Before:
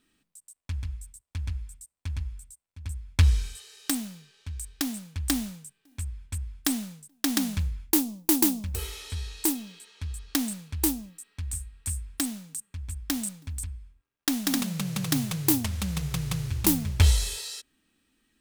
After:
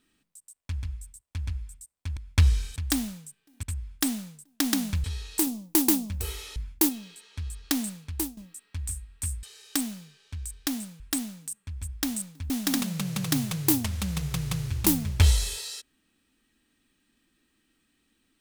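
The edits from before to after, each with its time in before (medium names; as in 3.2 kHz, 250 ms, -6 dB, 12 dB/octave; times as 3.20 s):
2.17–2.98 s: delete
3.57–5.14 s: move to 12.07 s
6.01–6.27 s: delete
7.68–8.01 s: swap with 9.10–9.53 s
10.49–11.01 s: fade out equal-power, to -15.5 dB
13.57–14.30 s: delete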